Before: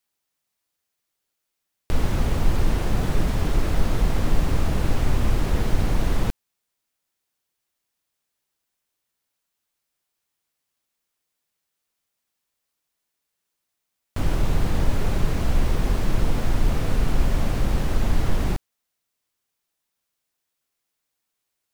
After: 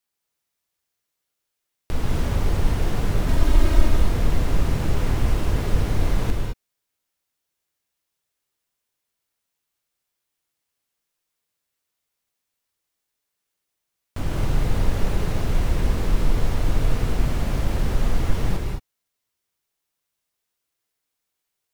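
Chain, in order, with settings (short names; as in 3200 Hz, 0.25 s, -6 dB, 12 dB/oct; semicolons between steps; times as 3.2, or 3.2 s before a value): 3.28–3.88 comb 3.2 ms, depth 93%; non-linear reverb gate 0.24 s rising, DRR 1 dB; gain -3 dB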